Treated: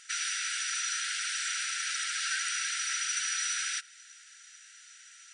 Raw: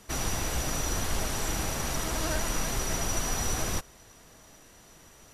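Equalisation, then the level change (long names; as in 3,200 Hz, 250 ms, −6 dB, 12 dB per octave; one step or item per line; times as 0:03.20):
dynamic equaliser 6,900 Hz, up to −6 dB, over −49 dBFS, Q 2.6
linear-phase brick-wall band-pass 1,300–9,700 Hz
+4.5 dB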